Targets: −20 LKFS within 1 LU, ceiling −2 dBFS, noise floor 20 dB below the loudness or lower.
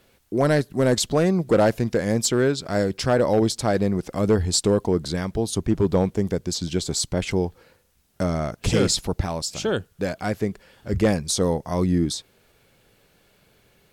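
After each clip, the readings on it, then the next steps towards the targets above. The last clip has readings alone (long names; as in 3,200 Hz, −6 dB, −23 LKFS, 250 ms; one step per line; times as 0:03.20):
share of clipped samples 0.5%; peaks flattened at −11.5 dBFS; integrated loudness −23.0 LKFS; sample peak −11.5 dBFS; target loudness −20.0 LKFS
→ clipped peaks rebuilt −11.5 dBFS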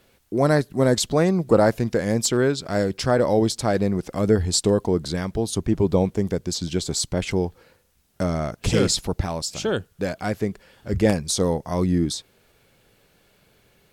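share of clipped samples 0.0%; integrated loudness −22.5 LKFS; sample peak −3.5 dBFS; target loudness −20.0 LKFS
→ level +2.5 dB
brickwall limiter −2 dBFS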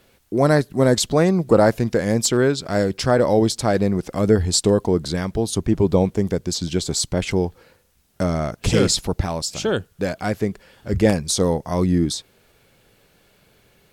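integrated loudness −20.0 LKFS; sample peak −2.0 dBFS; background noise floor −59 dBFS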